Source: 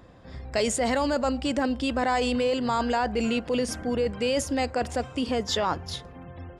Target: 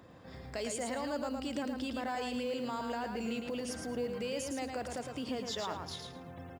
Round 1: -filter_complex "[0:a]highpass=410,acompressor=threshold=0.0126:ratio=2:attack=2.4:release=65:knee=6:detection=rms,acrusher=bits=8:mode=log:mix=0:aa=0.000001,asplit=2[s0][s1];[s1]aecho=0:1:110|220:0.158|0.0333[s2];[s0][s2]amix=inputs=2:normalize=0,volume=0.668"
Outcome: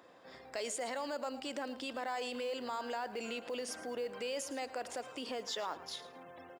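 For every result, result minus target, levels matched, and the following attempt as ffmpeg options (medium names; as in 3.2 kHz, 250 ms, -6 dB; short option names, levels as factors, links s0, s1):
125 Hz band -14.0 dB; echo-to-direct -11 dB
-filter_complex "[0:a]highpass=100,acompressor=threshold=0.0126:ratio=2:attack=2.4:release=65:knee=6:detection=rms,acrusher=bits=8:mode=log:mix=0:aa=0.000001,asplit=2[s0][s1];[s1]aecho=0:1:110|220:0.158|0.0333[s2];[s0][s2]amix=inputs=2:normalize=0,volume=0.668"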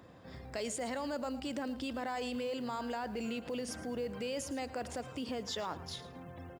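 echo-to-direct -11 dB
-filter_complex "[0:a]highpass=100,acompressor=threshold=0.0126:ratio=2:attack=2.4:release=65:knee=6:detection=rms,acrusher=bits=8:mode=log:mix=0:aa=0.000001,asplit=2[s0][s1];[s1]aecho=0:1:110|220|330:0.562|0.118|0.0248[s2];[s0][s2]amix=inputs=2:normalize=0,volume=0.668"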